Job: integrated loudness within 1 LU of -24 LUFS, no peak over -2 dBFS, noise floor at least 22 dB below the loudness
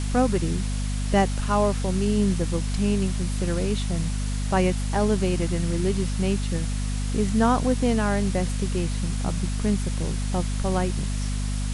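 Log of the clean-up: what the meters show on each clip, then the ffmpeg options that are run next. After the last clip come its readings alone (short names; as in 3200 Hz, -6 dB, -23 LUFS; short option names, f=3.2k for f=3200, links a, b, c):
hum 50 Hz; harmonics up to 250 Hz; hum level -24 dBFS; noise floor -27 dBFS; noise floor target -47 dBFS; loudness -25.0 LUFS; peak -6.0 dBFS; loudness target -24.0 LUFS
-> -af "bandreject=f=50:t=h:w=6,bandreject=f=100:t=h:w=6,bandreject=f=150:t=h:w=6,bandreject=f=200:t=h:w=6,bandreject=f=250:t=h:w=6"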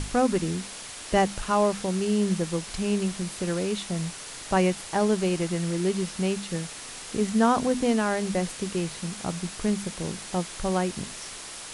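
hum none; noise floor -40 dBFS; noise floor target -50 dBFS
-> -af "afftdn=nr=10:nf=-40"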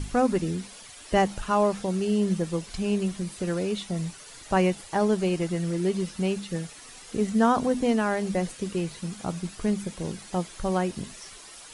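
noise floor -46 dBFS; noise floor target -50 dBFS
-> -af "afftdn=nr=6:nf=-46"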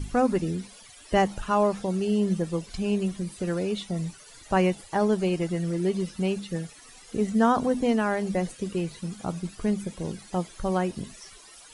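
noise floor -50 dBFS; loudness -27.5 LUFS; peak -9.5 dBFS; loudness target -24.0 LUFS
-> -af "volume=3.5dB"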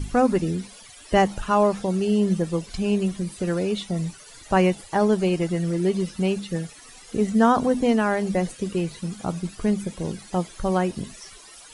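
loudness -24.0 LUFS; peak -6.0 dBFS; noise floor -46 dBFS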